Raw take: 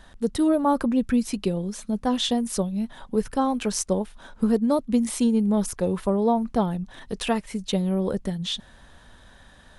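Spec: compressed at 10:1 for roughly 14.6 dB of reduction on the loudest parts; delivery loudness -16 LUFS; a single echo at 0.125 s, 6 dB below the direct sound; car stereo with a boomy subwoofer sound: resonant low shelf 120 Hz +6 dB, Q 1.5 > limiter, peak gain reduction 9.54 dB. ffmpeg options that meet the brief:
-af "acompressor=threshold=-32dB:ratio=10,lowshelf=f=120:t=q:w=1.5:g=6,aecho=1:1:125:0.501,volume=23dB,alimiter=limit=-6.5dB:level=0:latency=1"

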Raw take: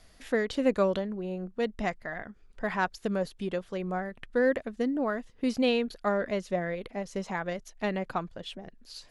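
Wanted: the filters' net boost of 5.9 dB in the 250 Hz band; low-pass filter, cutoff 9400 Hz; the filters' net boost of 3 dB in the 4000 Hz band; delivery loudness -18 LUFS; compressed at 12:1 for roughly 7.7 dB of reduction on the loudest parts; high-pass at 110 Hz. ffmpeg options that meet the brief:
-af "highpass=110,lowpass=9.4k,equalizer=f=250:t=o:g=7,equalizer=f=4k:t=o:g=4,acompressor=threshold=-24dB:ratio=12,volume=13.5dB"

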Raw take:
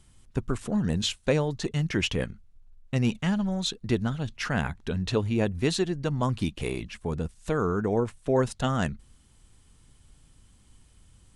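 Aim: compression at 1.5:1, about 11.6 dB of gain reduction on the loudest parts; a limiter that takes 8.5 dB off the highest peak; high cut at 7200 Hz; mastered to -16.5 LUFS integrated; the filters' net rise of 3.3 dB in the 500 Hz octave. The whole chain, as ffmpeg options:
-af "lowpass=7.2k,equalizer=f=500:t=o:g=4,acompressor=threshold=-50dB:ratio=1.5,volume=23dB,alimiter=limit=-5.5dB:level=0:latency=1"

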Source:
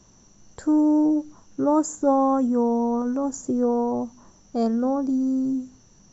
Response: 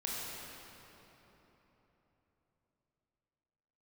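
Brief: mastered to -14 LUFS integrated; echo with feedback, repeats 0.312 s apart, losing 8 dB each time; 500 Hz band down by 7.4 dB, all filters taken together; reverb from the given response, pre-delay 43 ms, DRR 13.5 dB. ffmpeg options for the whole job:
-filter_complex "[0:a]equalizer=f=500:t=o:g=-8.5,aecho=1:1:312|624|936|1248|1560:0.398|0.159|0.0637|0.0255|0.0102,asplit=2[a][b];[1:a]atrim=start_sample=2205,adelay=43[c];[b][c]afir=irnorm=-1:irlink=0,volume=-17dB[d];[a][d]amix=inputs=2:normalize=0,volume=11dB"

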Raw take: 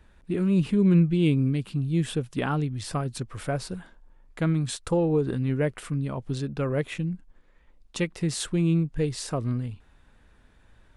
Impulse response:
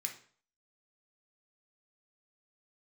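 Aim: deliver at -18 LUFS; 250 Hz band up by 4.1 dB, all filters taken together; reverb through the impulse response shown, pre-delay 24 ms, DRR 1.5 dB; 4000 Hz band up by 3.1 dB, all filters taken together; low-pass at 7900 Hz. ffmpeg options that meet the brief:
-filter_complex "[0:a]lowpass=7.9k,equalizer=f=250:t=o:g=6.5,equalizer=f=4k:t=o:g=4,asplit=2[a][b];[1:a]atrim=start_sample=2205,adelay=24[c];[b][c]afir=irnorm=-1:irlink=0,volume=-1dB[d];[a][d]amix=inputs=2:normalize=0,volume=4dB"

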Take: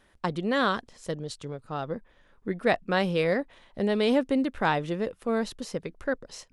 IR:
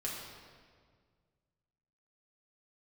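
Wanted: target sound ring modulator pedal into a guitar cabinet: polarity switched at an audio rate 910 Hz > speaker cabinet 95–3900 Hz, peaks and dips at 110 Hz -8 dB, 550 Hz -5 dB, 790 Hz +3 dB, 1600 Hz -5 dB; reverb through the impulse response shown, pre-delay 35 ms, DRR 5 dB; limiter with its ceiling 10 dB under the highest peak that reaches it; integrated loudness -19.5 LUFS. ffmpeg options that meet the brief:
-filter_complex "[0:a]alimiter=limit=-20.5dB:level=0:latency=1,asplit=2[a][b];[1:a]atrim=start_sample=2205,adelay=35[c];[b][c]afir=irnorm=-1:irlink=0,volume=-7dB[d];[a][d]amix=inputs=2:normalize=0,aeval=exprs='val(0)*sgn(sin(2*PI*910*n/s))':c=same,highpass=95,equalizer=f=110:t=q:w=4:g=-8,equalizer=f=550:t=q:w=4:g=-5,equalizer=f=790:t=q:w=4:g=3,equalizer=f=1.6k:t=q:w=4:g=-5,lowpass=f=3.9k:w=0.5412,lowpass=f=3.9k:w=1.3066,volume=11.5dB"

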